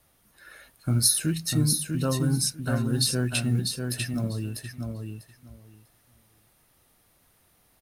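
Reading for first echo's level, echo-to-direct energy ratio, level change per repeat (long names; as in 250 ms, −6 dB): −5.0 dB, −5.0 dB, −16.0 dB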